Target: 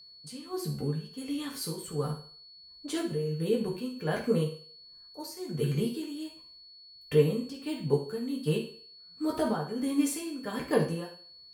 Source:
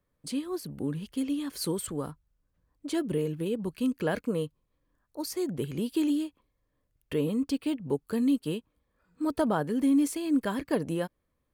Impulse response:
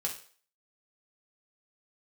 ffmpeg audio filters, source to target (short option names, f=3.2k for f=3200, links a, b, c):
-filter_complex "[0:a]tremolo=f=1.4:d=0.74[a];[1:a]atrim=start_sample=2205,asetrate=40131,aresample=44100[b];[a][b]afir=irnorm=-1:irlink=0,aeval=exprs='val(0)+0.00316*sin(2*PI*4400*n/s)':c=same"